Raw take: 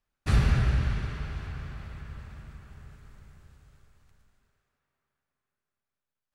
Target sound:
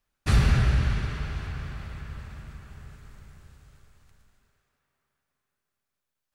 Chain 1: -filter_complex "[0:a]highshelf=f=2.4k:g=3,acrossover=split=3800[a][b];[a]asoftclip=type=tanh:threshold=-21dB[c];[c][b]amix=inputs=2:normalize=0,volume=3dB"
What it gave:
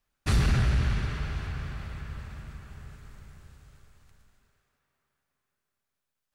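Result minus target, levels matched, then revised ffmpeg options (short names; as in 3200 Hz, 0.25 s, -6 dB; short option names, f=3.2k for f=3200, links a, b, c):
soft clip: distortion +13 dB
-filter_complex "[0:a]highshelf=f=2.4k:g=3,acrossover=split=3800[a][b];[a]asoftclip=type=tanh:threshold=-11.5dB[c];[c][b]amix=inputs=2:normalize=0,volume=3dB"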